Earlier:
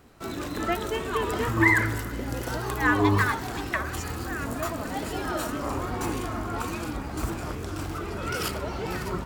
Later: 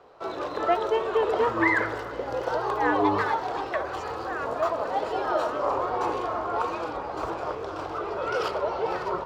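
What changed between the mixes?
speech −5.5 dB
first sound: add octave-band graphic EQ 125/250/500/1,000/2,000/8,000 Hz +4/−10/+10/+7/−5/−5 dB
master: add three-way crossover with the lows and the highs turned down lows −15 dB, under 250 Hz, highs −23 dB, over 5,800 Hz

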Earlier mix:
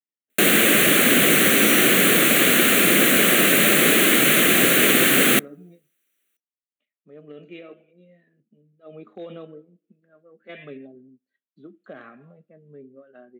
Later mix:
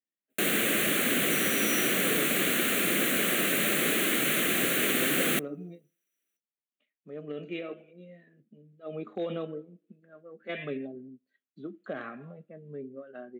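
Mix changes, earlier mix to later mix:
speech +4.0 dB
first sound −10.5 dB

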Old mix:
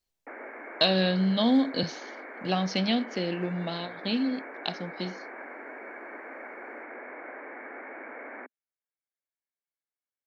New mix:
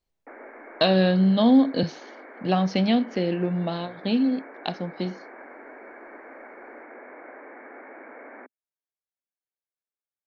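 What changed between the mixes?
speech +6.0 dB
master: add high-shelf EQ 2,500 Hz −11.5 dB

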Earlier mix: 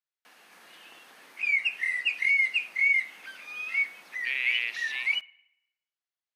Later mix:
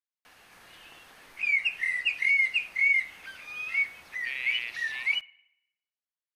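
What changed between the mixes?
speech −5.0 dB
background: remove high-pass filter 190 Hz 24 dB per octave

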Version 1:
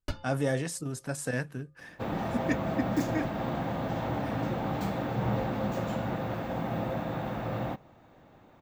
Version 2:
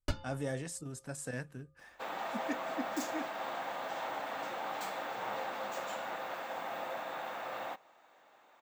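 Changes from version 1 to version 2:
speech −8.5 dB
second sound: add high-pass filter 790 Hz 12 dB per octave
master: add parametric band 7,800 Hz +5 dB 0.43 octaves

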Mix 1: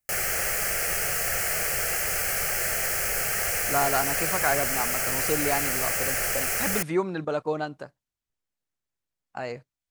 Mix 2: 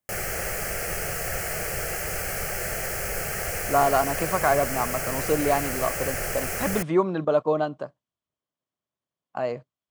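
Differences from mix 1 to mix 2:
speech: add loudspeaker in its box 120–8,500 Hz, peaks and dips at 620 Hz +7 dB, 1,100 Hz +9 dB, 3,200 Hz +8 dB
master: add tilt shelving filter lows +5 dB, about 860 Hz

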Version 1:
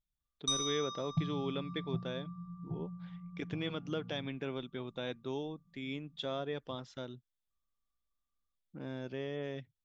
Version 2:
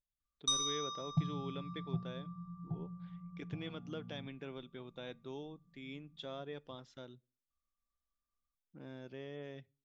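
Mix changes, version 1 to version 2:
speech −7.5 dB
reverb: on, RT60 0.40 s

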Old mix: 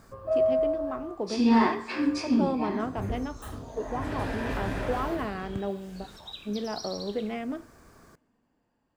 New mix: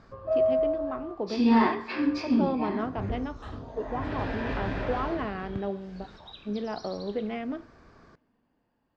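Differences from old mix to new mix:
second sound −5.0 dB
master: add low-pass filter 4,800 Hz 24 dB per octave

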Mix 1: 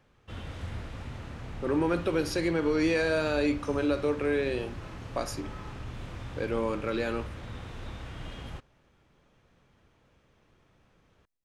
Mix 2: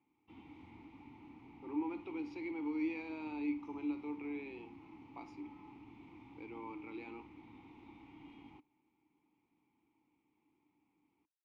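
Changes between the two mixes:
speech: add band-pass filter 430–5,900 Hz
master: add formant filter u

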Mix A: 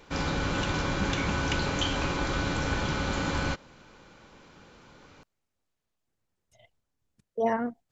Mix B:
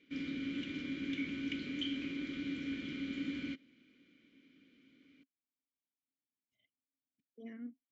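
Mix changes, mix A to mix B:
speech −6.0 dB
master: add formant filter i

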